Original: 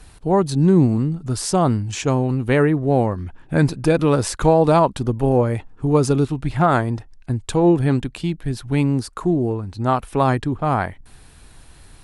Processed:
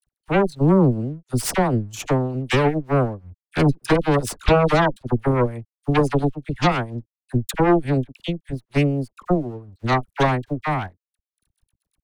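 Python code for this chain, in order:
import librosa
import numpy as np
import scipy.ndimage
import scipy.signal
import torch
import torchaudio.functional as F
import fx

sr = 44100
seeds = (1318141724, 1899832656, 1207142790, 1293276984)

y = fx.bin_expand(x, sr, power=1.5)
y = fx.high_shelf(y, sr, hz=9200.0, db=7.5)
y = fx.transient(y, sr, attack_db=7, sustain_db=-8)
y = fx.cheby_harmonics(y, sr, harmonics=(8,), levels_db=(-13,), full_scale_db=0.0)
y = np.sign(y) * np.maximum(np.abs(y) - 10.0 ** (-50.0 / 20.0), 0.0)
y = fx.dispersion(y, sr, late='lows', ms=50.0, hz=1000.0)
y = F.gain(torch.from_numpy(y), -4.0).numpy()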